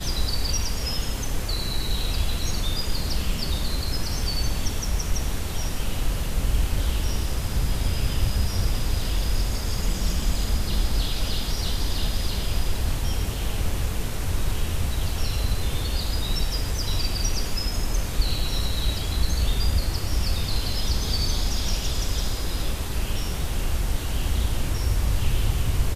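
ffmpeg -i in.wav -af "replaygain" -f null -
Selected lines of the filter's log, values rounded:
track_gain = +11.4 dB
track_peak = 0.271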